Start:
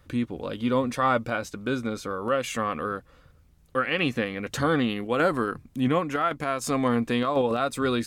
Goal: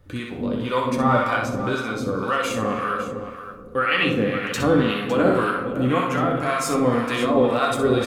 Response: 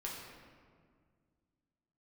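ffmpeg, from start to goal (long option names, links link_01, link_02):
-filter_complex "[0:a]aecho=1:1:63|557:0.562|0.251,asplit=2[link_01][link_02];[1:a]atrim=start_sample=2205,adelay=10[link_03];[link_02][link_03]afir=irnorm=-1:irlink=0,volume=-1.5dB[link_04];[link_01][link_04]amix=inputs=2:normalize=0,acrossover=split=730[link_05][link_06];[link_05]aeval=exprs='val(0)*(1-0.7/2+0.7/2*cos(2*PI*1.9*n/s))':channel_layout=same[link_07];[link_06]aeval=exprs='val(0)*(1-0.7/2-0.7/2*cos(2*PI*1.9*n/s))':channel_layout=same[link_08];[link_07][link_08]amix=inputs=2:normalize=0,volume=4.5dB"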